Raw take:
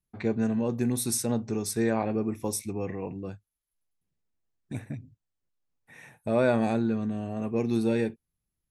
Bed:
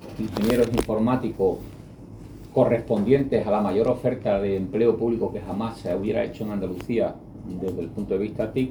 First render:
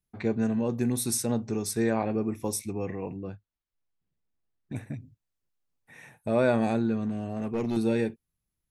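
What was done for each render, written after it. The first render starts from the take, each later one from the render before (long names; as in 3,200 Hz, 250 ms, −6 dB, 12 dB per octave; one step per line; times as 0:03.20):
0:03.16–0:04.76: high-frequency loss of the air 160 metres
0:07.06–0:07.77: hard clipping −24 dBFS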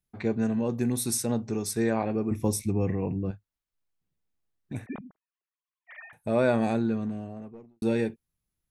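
0:02.31–0:03.31: low-shelf EQ 260 Hz +11.5 dB
0:04.86–0:06.13: three sine waves on the formant tracks
0:06.85–0:07.82: fade out and dull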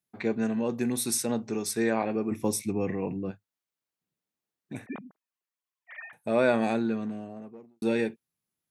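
dynamic equaliser 2,400 Hz, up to +4 dB, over −48 dBFS, Q 0.77
high-pass filter 180 Hz 12 dB per octave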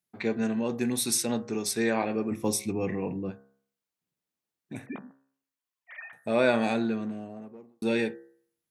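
hum removal 67.66 Hz, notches 29
dynamic equaliser 3,700 Hz, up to +5 dB, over −45 dBFS, Q 0.75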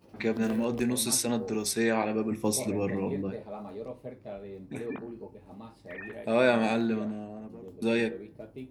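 mix in bed −18.5 dB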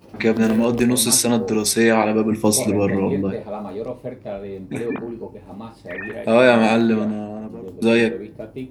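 level +11 dB
brickwall limiter −2 dBFS, peak gain reduction 2 dB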